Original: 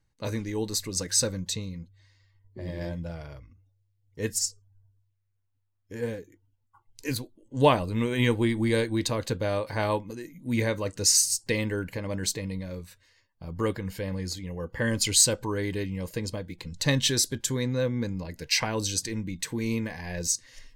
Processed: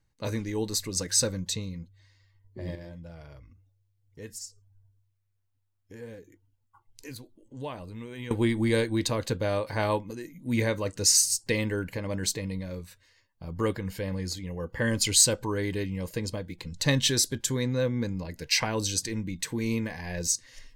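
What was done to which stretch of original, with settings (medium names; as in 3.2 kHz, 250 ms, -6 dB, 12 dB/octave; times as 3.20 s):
2.75–8.31 s: compression 2:1, threshold -47 dBFS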